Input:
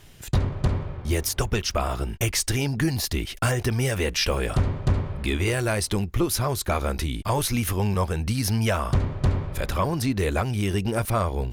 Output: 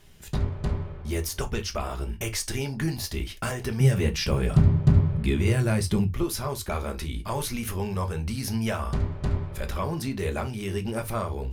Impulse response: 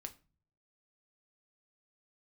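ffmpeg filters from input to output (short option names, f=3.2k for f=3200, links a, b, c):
-filter_complex "[0:a]asettb=1/sr,asplit=3[a][b][c];[a]atrim=end=3.804[d];[b]atrim=start=3.8:end=6.14,asetpts=PTS-STARTPTS,afade=t=in:d=0.004:c=qsin,afade=t=out:st=2.336:d=0.004:c=qsin,equalizer=f=140:w=0.91:g=14[e];[c]atrim=start=6.136[f];[d][e]acrossfade=d=0.004:c1=hsin:c2=qsin[g];[g][f]acrossfade=d=0.004:c1=qsin:c2=hsin[h];[1:a]atrim=start_sample=2205,atrim=end_sample=3528,asetrate=48510,aresample=44100[i];[h][i]afir=irnorm=-1:irlink=0"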